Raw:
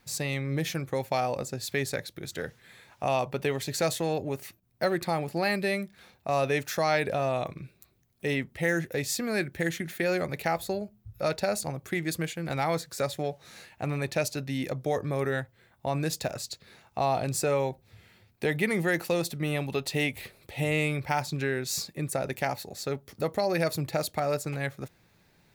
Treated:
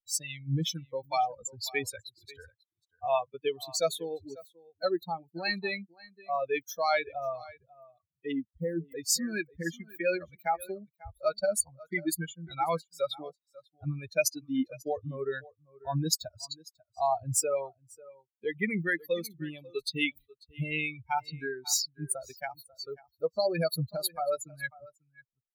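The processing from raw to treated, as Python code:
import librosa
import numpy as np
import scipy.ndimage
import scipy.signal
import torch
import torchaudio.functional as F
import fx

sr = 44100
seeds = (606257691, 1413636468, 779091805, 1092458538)

y = fx.bin_expand(x, sr, power=3.0)
y = fx.peak_eq(y, sr, hz=6900.0, db=6.5, octaves=2.0)
y = fx.rider(y, sr, range_db=4, speed_s=2.0)
y = y + 10.0 ** (-20.5 / 20.0) * np.pad(y, (int(543 * sr / 1000.0), 0))[:len(y)]
y = fx.noise_reduce_blind(y, sr, reduce_db=10)
y = fx.spec_box(y, sr, start_s=8.32, length_s=0.57, low_hz=850.0, high_hz=7100.0, gain_db=-25)
y = y * librosa.db_to_amplitude(4.5)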